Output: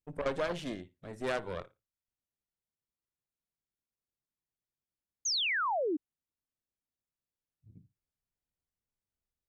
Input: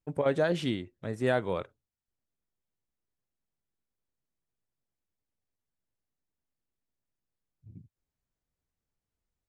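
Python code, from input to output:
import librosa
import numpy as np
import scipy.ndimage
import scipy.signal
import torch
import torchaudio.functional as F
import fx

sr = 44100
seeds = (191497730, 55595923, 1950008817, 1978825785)

y = fx.room_flutter(x, sr, wall_m=9.9, rt60_s=0.21)
y = fx.cheby_harmonics(y, sr, harmonics=(6,), levels_db=(-14,), full_scale_db=-13.5)
y = fx.spec_paint(y, sr, seeds[0], shape='fall', start_s=5.25, length_s=0.72, low_hz=280.0, high_hz=6800.0, level_db=-24.0)
y = F.gain(torch.from_numpy(y), -7.0).numpy()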